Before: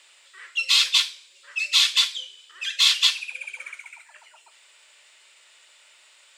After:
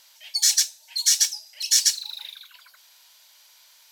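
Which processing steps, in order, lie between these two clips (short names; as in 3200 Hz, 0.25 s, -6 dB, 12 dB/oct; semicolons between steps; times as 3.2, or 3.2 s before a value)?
low shelf 350 Hz +11 dB; wide varispeed 1.63×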